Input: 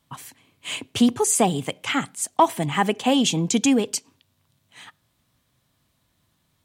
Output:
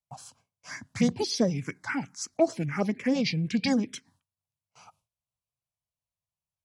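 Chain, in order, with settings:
formants moved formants −6 semitones
phaser swept by the level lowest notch 290 Hz, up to 2,500 Hz, full sweep at −14.5 dBFS
noise gate with hold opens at −50 dBFS
level −4.5 dB

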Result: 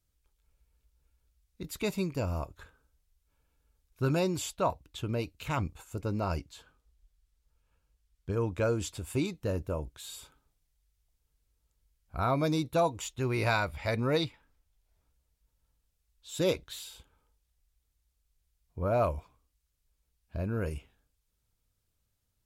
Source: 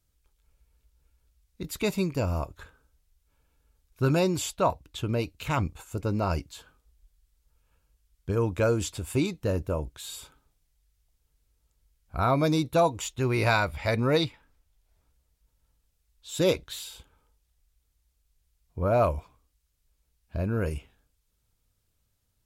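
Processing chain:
0:06.38–0:08.84: high-shelf EQ 11,000 Hz −8.5 dB
level −4.5 dB

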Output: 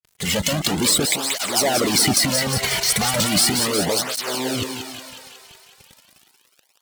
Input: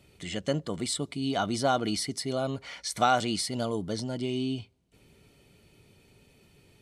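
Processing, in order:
in parallel at +3 dB: downward compressor, threshold −42 dBFS, peak gain reduction 21.5 dB
on the sum: fuzz pedal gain 42 dB, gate −43 dBFS
low-shelf EQ 97 Hz +7.5 dB
transient designer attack −5 dB, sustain +9 dB
high-shelf EQ 4,400 Hz +6 dB
on a send: feedback echo with a high-pass in the loop 181 ms, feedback 68%, high-pass 310 Hz, level −5 dB
on the sum: harmonic and percussive parts rebalanced percussive +9 dB
through-zero flanger with one copy inverted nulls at 0.36 Hz, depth 3.8 ms
level −10.5 dB

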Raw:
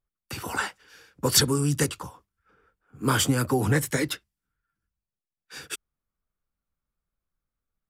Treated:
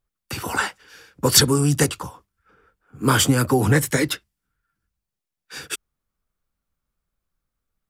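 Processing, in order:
0:01.52–0:01.92: parametric band 730 Hz +7 dB 0.37 octaves
level +5.5 dB

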